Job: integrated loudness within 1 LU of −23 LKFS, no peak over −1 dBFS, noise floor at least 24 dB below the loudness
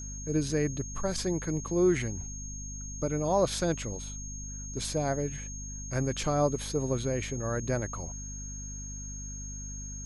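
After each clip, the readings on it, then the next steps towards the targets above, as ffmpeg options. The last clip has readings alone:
mains hum 50 Hz; hum harmonics up to 250 Hz; level of the hum −39 dBFS; interfering tone 6,500 Hz; level of the tone −41 dBFS; integrated loudness −32.0 LKFS; sample peak −14.0 dBFS; target loudness −23.0 LKFS
→ -af "bandreject=frequency=50:width_type=h:width=6,bandreject=frequency=100:width_type=h:width=6,bandreject=frequency=150:width_type=h:width=6,bandreject=frequency=200:width_type=h:width=6,bandreject=frequency=250:width_type=h:width=6"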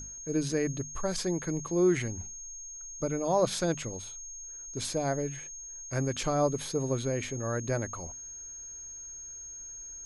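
mains hum none found; interfering tone 6,500 Hz; level of the tone −41 dBFS
→ -af "bandreject=frequency=6500:width=30"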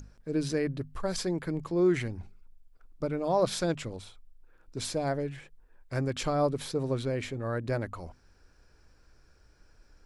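interfering tone none found; integrated loudness −31.5 LKFS; sample peak −15.0 dBFS; target loudness −23.0 LKFS
→ -af "volume=8.5dB"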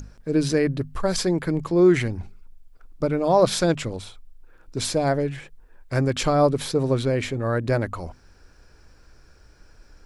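integrated loudness −23.0 LKFS; sample peak −6.5 dBFS; background noise floor −53 dBFS

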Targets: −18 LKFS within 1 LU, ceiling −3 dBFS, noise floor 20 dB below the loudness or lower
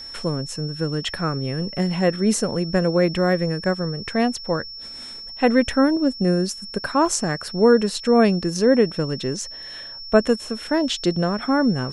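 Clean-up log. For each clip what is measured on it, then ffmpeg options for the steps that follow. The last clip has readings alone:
interfering tone 5,400 Hz; level of the tone −34 dBFS; integrated loudness −21.0 LKFS; sample peak −2.5 dBFS; target loudness −18.0 LKFS
→ -af "bandreject=frequency=5400:width=30"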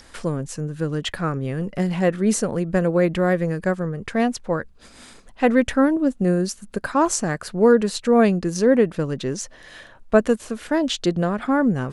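interfering tone none found; integrated loudness −21.5 LKFS; sample peak −2.5 dBFS; target loudness −18.0 LKFS
→ -af "volume=3.5dB,alimiter=limit=-3dB:level=0:latency=1"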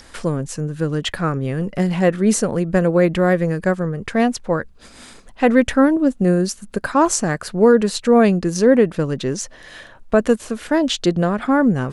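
integrated loudness −18.0 LKFS; sample peak −3.0 dBFS; background noise floor −45 dBFS

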